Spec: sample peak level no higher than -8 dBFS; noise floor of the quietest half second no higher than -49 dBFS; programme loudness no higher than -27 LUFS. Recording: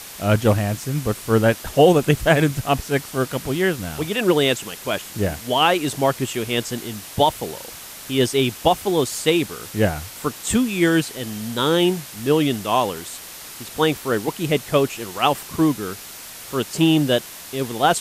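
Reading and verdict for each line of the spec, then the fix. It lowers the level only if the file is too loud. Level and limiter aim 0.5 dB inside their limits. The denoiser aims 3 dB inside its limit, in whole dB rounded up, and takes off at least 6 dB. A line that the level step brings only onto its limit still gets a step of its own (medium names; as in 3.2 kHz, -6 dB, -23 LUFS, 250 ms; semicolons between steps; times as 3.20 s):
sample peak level -2.0 dBFS: fail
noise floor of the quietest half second -38 dBFS: fail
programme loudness -20.5 LUFS: fail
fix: noise reduction 7 dB, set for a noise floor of -38 dBFS; trim -7 dB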